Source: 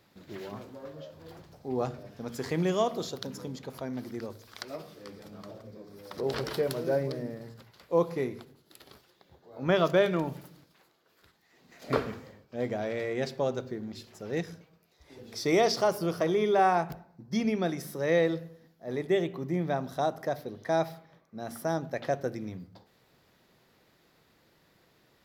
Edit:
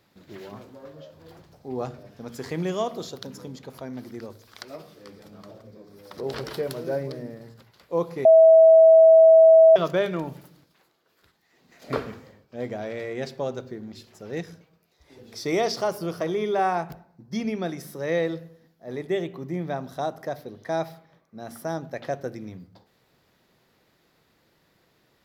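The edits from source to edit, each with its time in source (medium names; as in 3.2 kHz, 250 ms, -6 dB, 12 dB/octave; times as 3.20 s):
8.25–9.76 s: bleep 648 Hz -9 dBFS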